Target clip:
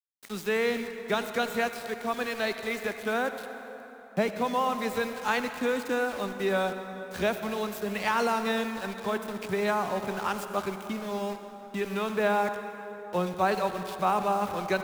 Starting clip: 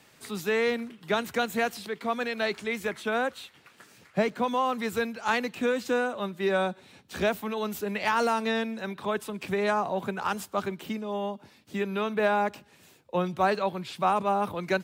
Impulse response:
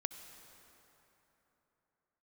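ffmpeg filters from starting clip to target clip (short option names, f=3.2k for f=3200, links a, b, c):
-filter_complex "[0:a]aeval=exprs='val(0)*gte(abs(val(0)),0.0141)':c=same[a];[1:a]atrim=start_sample=2205[b];[a][b]afir=irnorm=-1:irlink=0"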